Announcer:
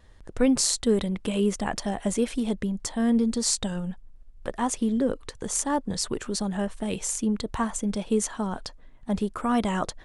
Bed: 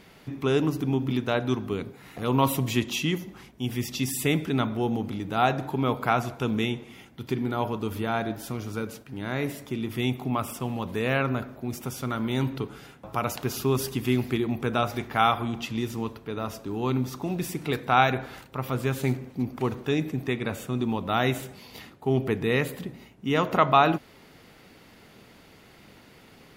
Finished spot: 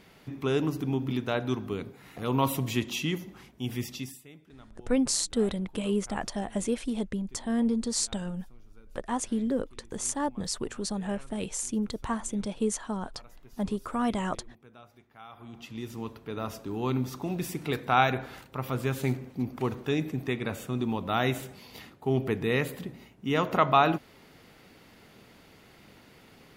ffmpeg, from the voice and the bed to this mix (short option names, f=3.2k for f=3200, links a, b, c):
-filter_complex "[0:a]adelay=4500,volume=-4dB[a];[1:a]volume=21dB,afade=t=out:st=3.8:d=0.42:silence=0.0668344,afade=t=in:st=15.29:d=1.13:silence=0.0595662[b];[a][b]amix=inputs=2:normalize=0"